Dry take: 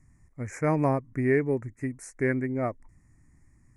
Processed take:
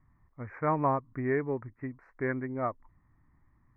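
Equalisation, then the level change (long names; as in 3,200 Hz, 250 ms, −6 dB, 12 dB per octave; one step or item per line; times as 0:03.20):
low-pass filter 3,600 Hz 12 dB per octave
high-frequency loss of the air 420 metres
parametric band 1,100 Hz +13.5 dB 1.2 octaves
−6.5 dB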